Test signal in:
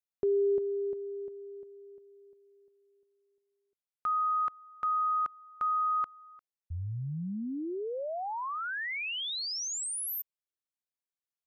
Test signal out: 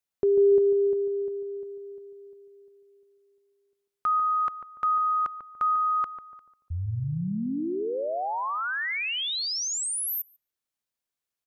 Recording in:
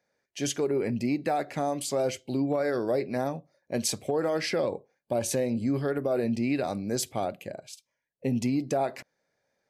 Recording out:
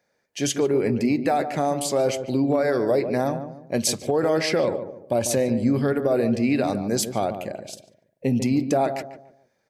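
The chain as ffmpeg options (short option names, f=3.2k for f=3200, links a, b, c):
-filter_complex "[0:a]asplit=2[a][b];[b]adelay=145,lowpass=f=980:p=1,volume=-8dB,asplit=2[c][d];[d]adelay=145,lowpass=f=980:p=1,volume=0.38,asplit=2[e][f];[f]adelay=145,lowpass=f=980:p=1,volume=0.38,asplit=2[g][h];[h]adelay=145,lowpass=f=980:p=1,volume=0.38[i];[a][c][e][g][i]amix=inputs=5:normalize=0,volume=5.5dB"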